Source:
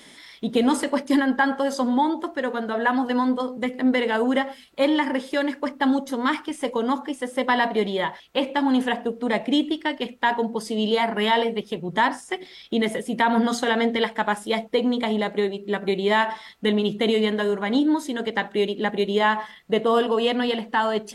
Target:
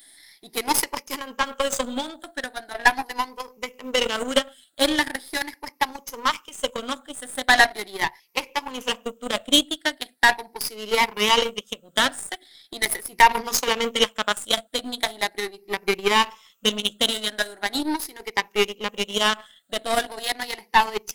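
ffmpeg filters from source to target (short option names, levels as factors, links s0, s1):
-af "afftfilt=real='re*pow(10,14/40*sin(2*PI*(0.8*log(max(b,1)*sr/1024/100)/log(2)-(0.4)*(pts-256)/sr)))':imag='im*pow(10,14/40*sin(2*PI*(0.8*log(max(b,1)*sr/1024/100)/log(2)-(0.4)*(pts-256)/sr)))':win_size=1024:overlap=0.75,aemphasis=mode=production:type=riaa,aeval=exprs='0.668*(cos(1*acos(clip(val(0)/0.668,-1,1)))-cos(1*PI/2))+0.0473*(cos(4*acos(clip(val(0)/0.668,-1,1)))-cos(4*PI/2))+0.00473*(cos(5*acos(clip(val(0)/0.668,-1,1)))-cos(5*PI/2))+0.0841*(cos(7*acos(clip(val(0)/0.668,-1,1)))-cos(7*PI/2))':c=same,volume=1.19"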